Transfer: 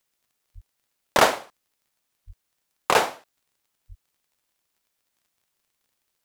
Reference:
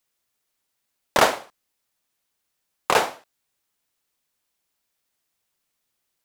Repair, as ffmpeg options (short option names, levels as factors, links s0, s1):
-filter_complex "[0:a]adeclick=t=4,asplit=3[s0][s1][s2];[s0]afade=t=out:st=0.54:d=0.02[s3];[s1]highpass=f=140:w=0.5412,highpass=f=140:w=1.3066,afade=t=in:st=0.54:d=0.02,afade=t=out:st=0.66:d=0.02[s4];[s2]afade=t=in:st=0.66:d=0.02[s5];[s3][s4][s5]amix=inputs=3:normalize=0,asplit=3[s6][s7][s8];[s6]afade=t=out:st=2.26:d=0.02[s9];[s7]highpass=f=140:w=0.5412,highpass=f=140:w=1.3066,afade=t=in:st=2.26:d=0.02,afade=t=out:st=2.38:d=0.02[s10];[s8]afade=t=in:st=2.38:d=0.02[s11];[s9][s10][s11]amix=inputs=3:normalize=0,asplit=3[s12][s13][s14];[s12]afade=t=out:st=3.88:d=0.02[s15];[s13]highpass=f=140:w=0.5412,highpass=f=140:w=1.3066,afade=t=in:st=3.88:d=0.02,afade=t=out:st=4:d=0.02[s16];[s14]afade=t=in:st=4:d=0.02[s17];[s15][s16][s17]amix=inputs=3:normalize=0"